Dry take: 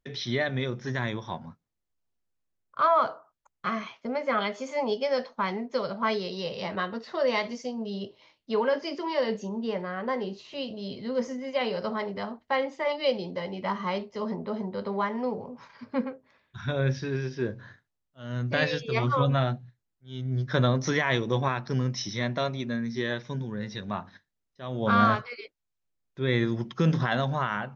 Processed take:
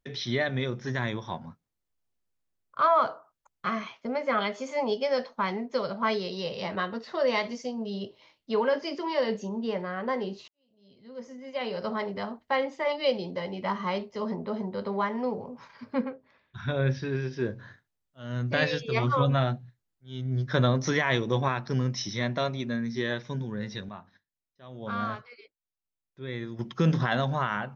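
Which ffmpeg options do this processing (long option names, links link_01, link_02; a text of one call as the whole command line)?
ffmpeg -i in.wav -filter_complex "[0:a]asettb=1/sr,asplit=3[link_01][link_02][link_03];[link_01]atrim=end=16.014[link_04];[link_02]atrim=start=16.01:end=17.33,asetpts=PTS-STARTPTS,afade=type=in:duration=0.004:curve=qsin,afade=type=out:start_time=1.316:duration=0.004:curve=qsin,lowpass=4900[link_05];[link_03]atrim=start=17.326[link_06];[link_04][link_05]acrossfade=duration=0.004:curve1=hsin:curve2=qsin[link_07];[link_07][link_06]acrossfade=duration=0.004:curve1=qsin:curve2=hsin,asplit=4[link_08][link_09][link_10][link_11];[link_08]atrim=end=10.48,asetpts=PTS-STARTPTS,afade=type=out:start_time=10.476:duration=0.004:curve=hsin[link_12];[link_09]atrim=start=10.48:end=23.89,asetpts=PTS-STARTPTS,afade=type=in:duration=1.46:curve=qua,afade=type=out:start_time=13.22:duration=0.19:curve=log:silence=0.298538[link_13];[link_10]atrim=start=23.89:end=26.59,asetpts=PTS-STARTPTS,volume=-10.5dB[link_14];[link_11]atrim=start=26.59,asetpts=PTS-STARTPTS,afade=type=in:duration=0.19:curve=log:silence=0.298538[link_15];[link_12][link_13][link_14][link_15]concat=n=4:v=0:a=1" out.wav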